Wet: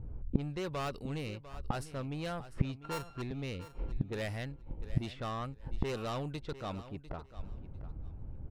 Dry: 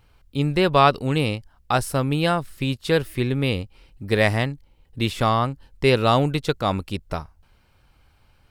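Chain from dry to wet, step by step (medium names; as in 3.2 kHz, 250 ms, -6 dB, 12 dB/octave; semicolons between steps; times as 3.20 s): 2.79–3.22 s: sorted samples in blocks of 32 samples; level-controlled noise filter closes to 310 Hz, open at -16 dBFS; saturation -19 dBFS, distortion -8 dB; inverted gate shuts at -33 dBFS, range -29 dB; feedback delay 699 ms, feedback 18%, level -14.5 dB; trim +15.5 dB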